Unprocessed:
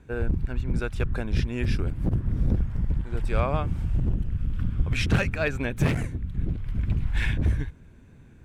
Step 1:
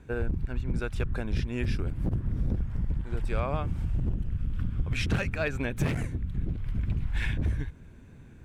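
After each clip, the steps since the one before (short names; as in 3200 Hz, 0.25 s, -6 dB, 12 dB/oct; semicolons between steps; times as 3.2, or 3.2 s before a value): compressor 2:1, threshold -29 dBFS, peak gain reduction 7.5 dB; gain +1 dB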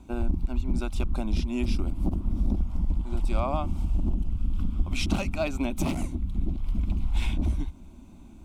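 fixed phaser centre 460 Hz, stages 6; gain +6 dB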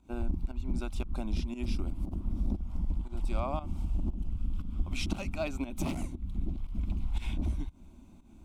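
pump 117 bpm, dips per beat 1, -14 dB, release 0.167 s; gain -5.5 dB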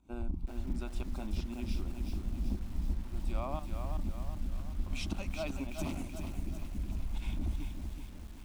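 lo-fi delay 0.378 s, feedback 55%, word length 8-bit, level -5.5 dB; gain -4.5 dB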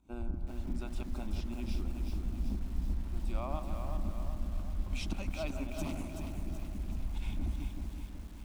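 analogue delay 0.162 s, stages 2048, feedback 64%, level -9 dB; gain -1 dB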